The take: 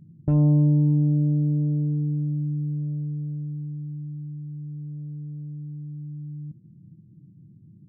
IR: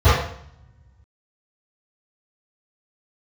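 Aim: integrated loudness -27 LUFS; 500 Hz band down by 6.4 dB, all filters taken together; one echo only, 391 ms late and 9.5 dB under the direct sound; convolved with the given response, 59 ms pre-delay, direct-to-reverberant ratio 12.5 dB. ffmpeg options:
-filter_complex "[0:a]equalizer=f=500:t=o:g=-9,aecho=1:1:391:0.335,asplit=2[s0][s1];[1:a]atrim=start_sample=2205,adelay=59[s2];[s1][s2]afir=irnorm=-1:irlink=0,volume=0.0133[s3];[s0][s3]amix=inputs=2:normalize=0,volume=0.794"

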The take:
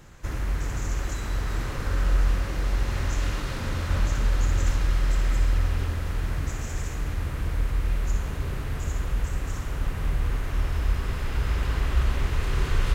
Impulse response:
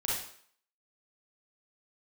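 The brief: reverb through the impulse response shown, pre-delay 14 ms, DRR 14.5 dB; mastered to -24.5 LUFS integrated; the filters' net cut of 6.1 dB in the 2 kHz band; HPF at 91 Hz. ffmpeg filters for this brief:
-filter_complex "[0:a]highpass=91,equalizer=f=2000:t=o:g=-8,asplit=2[s0][s1];[1:a]atrim=start_sample=2205,adelay=14[s2];[s1][s2]afir=irnorm=-1:irlink=0,volume=0.1[s3];[s0][s3]amix=inputs=2:normalize=0,volume=2.99"

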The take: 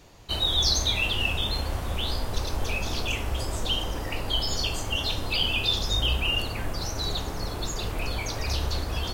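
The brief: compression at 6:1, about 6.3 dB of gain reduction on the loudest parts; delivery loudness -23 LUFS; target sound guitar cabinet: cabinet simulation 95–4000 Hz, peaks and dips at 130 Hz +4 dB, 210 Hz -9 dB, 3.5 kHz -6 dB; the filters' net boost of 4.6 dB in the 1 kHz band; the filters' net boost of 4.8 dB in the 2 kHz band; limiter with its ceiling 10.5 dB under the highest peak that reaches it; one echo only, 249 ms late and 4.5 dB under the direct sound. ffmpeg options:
-af "equalizer=f=1000:t=o:g=4,equalizer=f=2000:t=o:g=8,acompressor=threshold=0.0631:ratio=6,alimiter=level_in=1.19:limit=0.0631:level=0:latency=1,volume=0.841,highpass=95,equalizer=f=130:t=q:w=4:g=4,equalizer=f=210:t=q:w=4:g=-9,equalizer=f=3500:t=q:w=4:g=-6,lowpass=f=4000:w=0.5412,lowpass=f=4000:w=1.3066,aecho=1:1:249:0.596,volume=3.98"

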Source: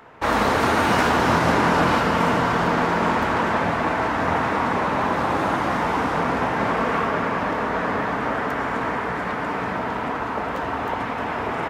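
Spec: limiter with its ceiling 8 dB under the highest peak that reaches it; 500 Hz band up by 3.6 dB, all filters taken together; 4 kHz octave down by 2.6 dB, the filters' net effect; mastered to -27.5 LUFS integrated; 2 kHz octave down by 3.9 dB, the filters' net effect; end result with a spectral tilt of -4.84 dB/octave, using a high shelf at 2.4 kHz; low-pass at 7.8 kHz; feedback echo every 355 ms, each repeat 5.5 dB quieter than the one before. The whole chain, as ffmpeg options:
-af "lowpass=7800,equalizer=f=500:t=o:g=4.5,equalizer=f=2000:t=o:g=-8,highshelf=f=2400:g=8.5,equalizer=f=4000:t=o:g=-8,alimiter=limit=0.224:level=0:latency=1,aecho=1:1:355|710|1065|1420|1775|2130|2485:0.531|0.281|0.149|0.079|0.0419|0.0222|0.0118,volume=0.501"

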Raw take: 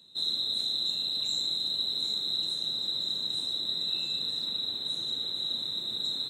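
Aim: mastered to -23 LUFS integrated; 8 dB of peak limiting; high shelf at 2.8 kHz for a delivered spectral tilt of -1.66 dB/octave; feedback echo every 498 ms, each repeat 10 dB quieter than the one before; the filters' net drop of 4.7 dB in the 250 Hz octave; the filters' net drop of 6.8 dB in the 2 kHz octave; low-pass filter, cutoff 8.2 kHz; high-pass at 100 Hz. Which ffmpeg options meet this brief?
-af "highpass=100,lowpass=8200,equalizer=f=250:t=o:g=-6,equalizer=f=2000:t=o:g=-7,highshelf=f=2800:g=-5,alimiter=level_in=2.11:limit=0.0631:level=0:latency=1,volume=0.473,aecho=1:1:498|996|1494|1992:0.316|0.101|0.0324|0.0104,volume=4.22"

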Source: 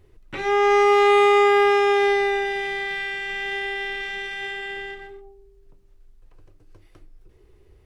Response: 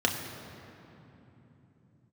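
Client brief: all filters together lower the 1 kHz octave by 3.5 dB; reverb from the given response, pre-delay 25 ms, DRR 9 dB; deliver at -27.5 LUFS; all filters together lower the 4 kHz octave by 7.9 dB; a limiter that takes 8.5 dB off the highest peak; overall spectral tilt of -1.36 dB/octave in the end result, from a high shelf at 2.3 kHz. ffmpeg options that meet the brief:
-filter_complex "[0:a]equalizer=f=1000:t=o:g=-3,highshelf=f=2300:g=-8,equalizer=f=4000:t=o:g=-3.5,alimiter=limit=0.112:level=0:latency=1,asplit=2[s0][s1];[1:a]atrim=start_sample=2205,adelay=25[s2];[s1][s2]afir=irnorm=-1:irlink=0,volume=0.0944[s3];[s0][s3]amix=inputs=2:normalize=0,volume=0.841"

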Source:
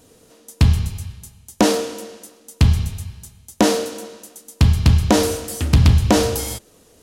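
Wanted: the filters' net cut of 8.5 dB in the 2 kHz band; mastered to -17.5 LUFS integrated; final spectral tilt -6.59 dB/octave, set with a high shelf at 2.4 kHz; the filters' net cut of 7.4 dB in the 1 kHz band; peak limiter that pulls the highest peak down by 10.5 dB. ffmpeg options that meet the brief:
-af "equalizer=f=1000:t=o:g=-8.5,equalizer=f=2000:t=o:g=-4,highshelf=f=2400:g=-8.5,volume=2.82,alimiter=limit=0.422:level=0:latency=1"

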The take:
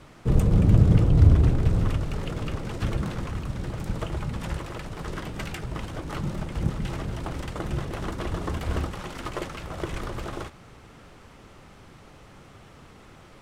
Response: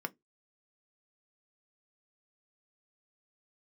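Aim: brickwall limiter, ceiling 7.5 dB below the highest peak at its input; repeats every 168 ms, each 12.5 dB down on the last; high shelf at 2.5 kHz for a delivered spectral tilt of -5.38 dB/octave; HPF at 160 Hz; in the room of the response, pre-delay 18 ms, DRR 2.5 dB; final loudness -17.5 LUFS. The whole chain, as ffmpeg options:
-filter_complex "[0:a]highpass=160,highshelf=f=2500:g=4.5,alimiter=limit=0.1:level=0:latency=1,aecho=1:1:168|336|504:0.237|0.0569|0.0137,asplit=2[s0][s1];[1:a]atrim=start_sample=2205,adelay=18[s2];[s1][s2]afir=irnorm=-1:irlink=0,volume=0.596[s3];[s0][s3]amix=inputs=2:normalize=0,volume=5.01"

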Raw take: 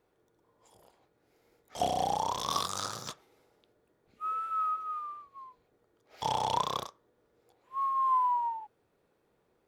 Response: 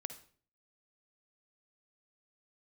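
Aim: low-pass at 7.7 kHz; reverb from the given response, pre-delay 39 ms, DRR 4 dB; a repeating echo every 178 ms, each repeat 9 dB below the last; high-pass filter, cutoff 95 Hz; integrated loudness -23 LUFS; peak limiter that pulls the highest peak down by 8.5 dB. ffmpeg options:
-filter_complex "[0:a]highpass=95,lowpass=7700,alimiter=limit=0.0708:level=0:latency=1,aecho=1:1:178|356|534|712:0.355|0.124|0.0435|0.0152,asplit=2[s0][s1];[1:a]atrim=start_sample=2205,adelay=39[s2];[s1][s2]afir=irnorm=-1:irlink=0,volume=0.841[s3];[s0][s3]amix=inputs=2:normalize=0,volume=2.82"

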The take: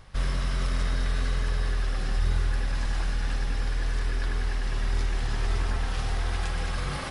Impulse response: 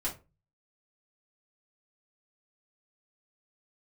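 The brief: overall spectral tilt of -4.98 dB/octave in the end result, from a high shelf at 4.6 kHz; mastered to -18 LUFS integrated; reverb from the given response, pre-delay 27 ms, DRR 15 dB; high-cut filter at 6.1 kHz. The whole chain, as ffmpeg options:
-filter_complex "[0:a]lowpass=6100,highshelf=f=4600:g=3,asplit=2[s0][s1];[1:a]atrim=start_sample=2205,adelay=27[s2];[s1][s2]afir=irnorm=-1:irlink=0,volume=0.112[s3];[s0][s3]amix=inputs=2:normalize=0,volume=4.47"

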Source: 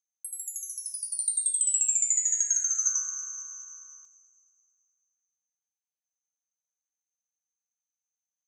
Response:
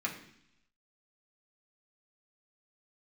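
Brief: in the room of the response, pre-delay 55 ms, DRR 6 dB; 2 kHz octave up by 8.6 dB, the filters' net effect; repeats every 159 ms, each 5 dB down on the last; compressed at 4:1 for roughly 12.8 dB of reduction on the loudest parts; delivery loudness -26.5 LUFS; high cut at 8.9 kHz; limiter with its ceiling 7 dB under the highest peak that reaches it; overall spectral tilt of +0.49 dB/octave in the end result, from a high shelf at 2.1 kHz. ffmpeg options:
-filter_complex "[0:a]lowpass=8900,equalizer=f=2000:t=o:g=8,highshelf=f=2100:g=6,acompressor=threshold=0.0224:ratio=4,alimiter=level_in=1.33:limit=0.0631:level=0:latency=1,volume=0.75,aecho=1:1:159|318|477|636|795|954|1113:0.562|0.315|0.176|0.0988|0.0553|0.031|0.0173,asplit=2[s0][s1];[1:a]atrim=start_sample=2205,adelay=55[s2];[s1][s2]afir=irnorm=-1:irlink=0,volume=0.299[s3];[s0][s3]amix=inputs=2:normalize=0,volume=2"

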